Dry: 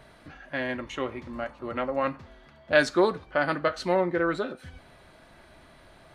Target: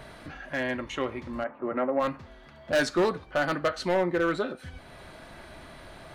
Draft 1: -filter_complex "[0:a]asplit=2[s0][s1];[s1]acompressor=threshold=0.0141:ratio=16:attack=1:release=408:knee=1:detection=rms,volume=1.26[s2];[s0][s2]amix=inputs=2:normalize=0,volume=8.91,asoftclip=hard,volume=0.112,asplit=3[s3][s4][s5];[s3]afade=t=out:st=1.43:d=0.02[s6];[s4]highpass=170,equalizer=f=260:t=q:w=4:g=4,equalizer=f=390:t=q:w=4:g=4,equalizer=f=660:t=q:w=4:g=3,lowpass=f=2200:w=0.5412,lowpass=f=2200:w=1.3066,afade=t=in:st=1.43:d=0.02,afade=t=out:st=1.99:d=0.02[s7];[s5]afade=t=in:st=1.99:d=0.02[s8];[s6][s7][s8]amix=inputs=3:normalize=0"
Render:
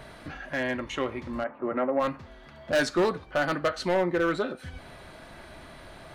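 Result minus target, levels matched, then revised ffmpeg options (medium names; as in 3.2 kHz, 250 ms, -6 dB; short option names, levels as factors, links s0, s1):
compression: peak gain reduction -5.5 dB
-filter_complex "[0:a]asplit=2[s0][s1];[s1]acompressor=threshold=0.00708:ratio=16:attack=1:release=408:knee=1:detection=rms,volume=1.26[s2];[s0][s2]amix=inputs=2:normalize=0,volume=8.91,asoftclip=hard,volume=0.112,asplit=3[s3][s4][s5];[s3]afade=t=out:st=1.43:d=0.02[s6];[s4]highpass=170,equalizer=f=260:t=q:w=4:g=4,equalizer=f=390:t=q:w=4:g=4,equalizer=f=660:t=q:w=4:g=3,lowpass=f=2200:w=0.5412,lowpass=f=2200:w=1.3066,afade=t=in:st=1.43:d=0.02,afade=t=out:st=1.99:d=0.02[s7];[s5]afade=t=in:st=1.99:d=0.02[s8];[s6][s7][s8]amix=inputs=3:normalize=0"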